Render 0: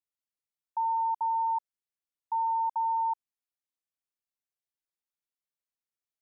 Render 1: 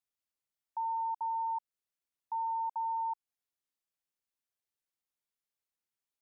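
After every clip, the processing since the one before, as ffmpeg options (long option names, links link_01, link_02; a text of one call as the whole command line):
ffmpeg -i in.wav -af "alimiter=level_in=6.5dB:limit=-24dB:level=0:latency=1:release=187,volume=-6.5dB" out.wav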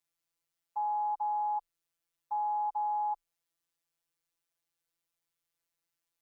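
ffmpeg -i in.wav -af "afftfilt=real='hypot(re,im)*cos(PI*b)':imag='0':win_size=1024:overlap=0.75,afreqshift=-23,volume=8dB" out.wav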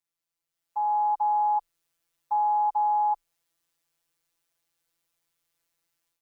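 ffmpeg -i in.wav -af "dynaudnorm=framelen=470:gausssize=3:maxgain=11dB,volume=-3dB" out.wav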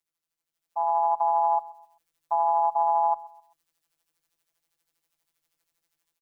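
ffmpeg -i in.wav -af "tremolo=f=160:d=0.947,aecho=1:1:130|260|390:0.0891|0.0321|0.0116,volume=4.5dB" out.wav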